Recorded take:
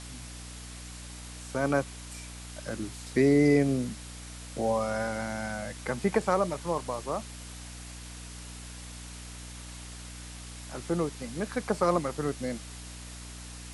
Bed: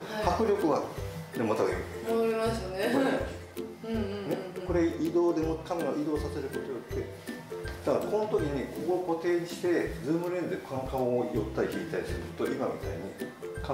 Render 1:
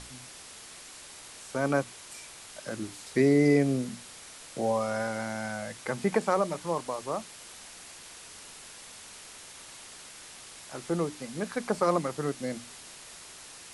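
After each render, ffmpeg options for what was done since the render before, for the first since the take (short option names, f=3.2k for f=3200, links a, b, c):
-af "bandreject=f=60:t=h:w=6,bandreject=f=120:t=h:w=6,bandreject=f=180:t=h:w=6,bandreject=f=240:t=h:w=6,bandreject=f=300:t=h:w=6"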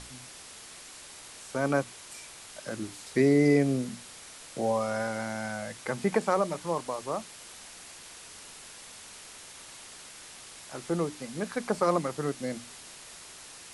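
-af anull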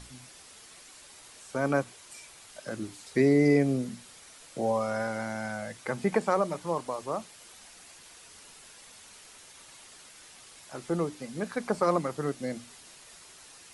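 -af "afftdn=nr=6:nf=-48"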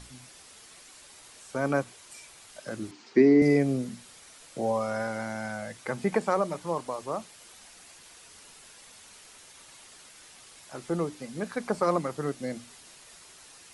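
-filter_complex "[0:a]asettb=1/sr,asplit=3[a][b][c];[a]atrim=end=2.914[d];[b]atrim=start=2.91:end=3.42,asetpts=PTS-STARTPTS,afade=t=in:d=0.004:c=qsin,afade=t=out:st=0.506:d=0.004:c=qsin,highpass=200,equalizer=f=230:t=q:w=4:g=9,equalizer=f=350:t=q:w=4:g=10,equalizer=f=560:t=q:w=4:g=-6,equalizer=f=1k:t=q:w=4:g=3,equalizer=f=3.7k:t=q:w=4:g=-6,lowpass=f=5.4k:w=0.5412,lowpass=f=5.4k:w=1.3066[e];[c]atrim=start=3.416[f];[d][e]acrossfade=d=0.004:c1=hsin:c2=qsin[g];[g][f]acrossfade=d=0.004:c1=qsin:c2=hsin"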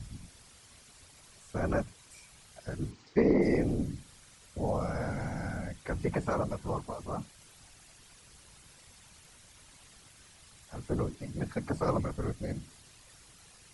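-filter_complex "[0:a]afftfilt=real='hypot(re,im)*cos(2*PI*random(0))':imag='hypot(re,im)*sin(2*PI*random(1))':win_size=512:overlap=0.75,acrossover=split=160[a][b];[a]aeval=exprs='0.0316*sin(PI/2*3.55*val(0)/0.0316)':c=same[c];[c][b]amix=inputs=2:normalize=0"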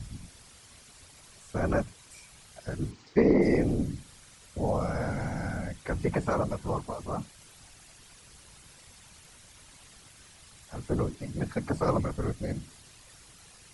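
-af "volume=3dB"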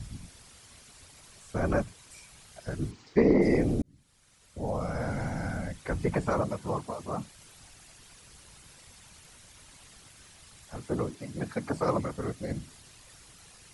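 -filter_complex "[0:a]asettb=1/sr,asplit=3[a][b][c];[a]atrim=end=6.414[d];[b]atrim=start=6.41:end=7.23,asetpts=PTS-STARTPTS,afade=t=in:d=0.004:c=qsin,afade=t=out:st=0.816:d=0.004:c=qsin,highpass=100[e];[c]atrim=start=7.226[f];[d][e]acrossfade=d=0.004:c1=hsin:c2=qsin[g];[g][f]acrossfade=d=0.004:c1=qsin:c2=hsin,asettb=1/sr,asplit=3[h][i][j];[h]atrim=end=10.774[k];[i]atrim=start=10.77:end=12.51,asetpts=PTS-STARTPTS,afade=t=in:d=0.004:c=qsin,afade=t=out:st=1.736:d=0.004:c=qsin,highpass=f=160:p=1[l];[j]atrim=start=12.506[m];[k][l]acrossfade=d=0.004:c1=hsin:c2=qsin[n];[n][m]acrossfade=d=0.004:c1=qsin:c2=hsin,asplit=2[o][p];[o]atrim=end=3.82,asetpts=PTS-STARTPTS,afade=t=out:st=3.816:d=0.004:c=hsin[q];[p]atrim=start=3.82,asetpts=PTS-STARTPTS,afade=t=in:d=1.36[r];[q][r]concat=n=2:v=0:a=1"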